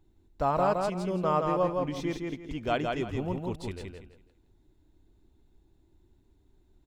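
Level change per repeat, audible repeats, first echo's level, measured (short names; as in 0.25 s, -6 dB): -11.5 dB, 3, -3.5 dB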